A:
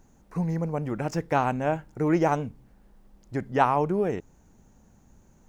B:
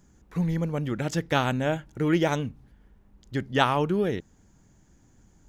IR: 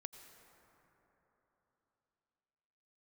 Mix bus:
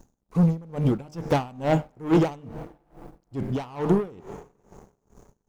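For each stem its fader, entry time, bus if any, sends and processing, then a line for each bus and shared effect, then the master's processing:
+1.5 dB, 0.00 s, send −5 dB, parametric band 2,100 Hz −9 dB 0.98 octaves; soft clipping −21 dBFS, distortion −13 dB
−7.0 dB, 0.00 s, no send, wavefolder on the positive side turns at −17.5 dBFS; downward expander −50 dBFS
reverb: on, RT60 3.8 s, pre-delay 78 ms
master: hum removal 75.87 Hz, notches 32; leveller curve on the samples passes 2; tremolo with a sine in dB 2.3 Hz, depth 26 dB

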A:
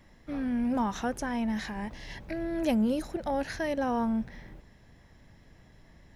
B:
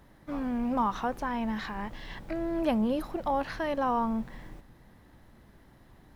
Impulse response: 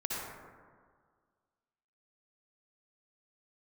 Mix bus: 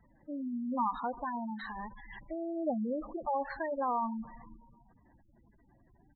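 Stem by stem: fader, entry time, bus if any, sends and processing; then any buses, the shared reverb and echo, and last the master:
−11.0 dB, 0.00 s, no send, low-shelf EQ 300 Hz −5.5 dB; hollow resonant body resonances 220/2,000 Hz, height 6 dB, ringing for 20 ms; automatic ducking −18 dB, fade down 1.55 s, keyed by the second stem
−2.0 dB, 3.6 ms, send −18 dB, low-shelf EQ 400 Hz −7.5 dB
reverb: on, RT60 1.8 s, pre-delay 53 ms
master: gate on every frequency bin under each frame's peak −10 dB strong

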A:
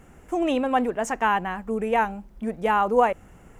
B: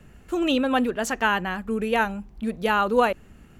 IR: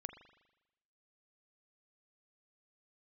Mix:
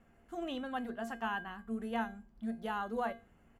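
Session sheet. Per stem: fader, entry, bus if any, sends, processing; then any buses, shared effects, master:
−3.0 dB, 0.00 s, no send, Butterworth low-pass 3,500 Hz 72 dB per octave; mains-hum notches 60/120/180/240/300/360/420/480 Hz
−13.5 dB, 0.7 ms, no send, ceiling on every frequency bin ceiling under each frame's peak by 14 dB; parametric band 2,600 Hz −3.5 dB 1 octave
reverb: not used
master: tuned comb filter 230 Hz, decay 0.32 s, harmonics odd, mix 80%

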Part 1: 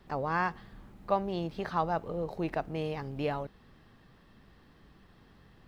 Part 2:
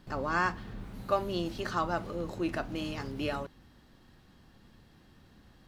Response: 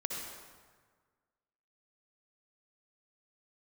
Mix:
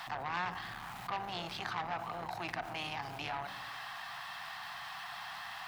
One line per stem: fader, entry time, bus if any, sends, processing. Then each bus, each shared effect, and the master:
−5.5 dB, 0.00 s, no send, Chebyshev high-pass filter 700 Hz, order 6; envelope flattener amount 70%
−18.5 dB, 0.00 s, polarity flipped, send −8 dB, no processing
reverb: on, RT60 1.6 s, pre-delay 53 ms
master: parametric band 140 Hz +13.5 dB 1.1 octaves; saturating transformer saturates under 2,200 Hz

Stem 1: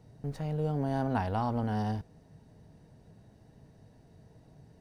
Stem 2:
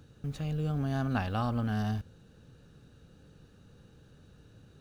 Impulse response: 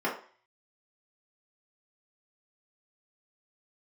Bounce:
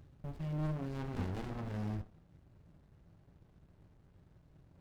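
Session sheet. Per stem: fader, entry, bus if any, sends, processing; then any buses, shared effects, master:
+0.5 dB, 0.00 s, send −15.5 dB, running median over 25 samples; elliptic band-stop filter 500–1,900 Hz
+0.5 dB, 0.00 s, send −14 dB, tilt shelving filter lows +4.5 dB, about 670 Hz; automatic ducking −9 dB, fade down 0.25 s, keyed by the first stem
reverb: on, RT60 0.45 s, pre-delay 3 ms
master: parametric band 270 Hz −12.5 dB 2 octaves; windowed peak hold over 65 samples

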